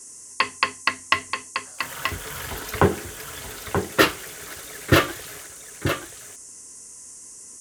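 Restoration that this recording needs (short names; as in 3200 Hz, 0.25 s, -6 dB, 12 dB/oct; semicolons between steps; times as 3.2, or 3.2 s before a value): noise print and reduce 28 dB; inverse comb 0.931 s -6.5 dB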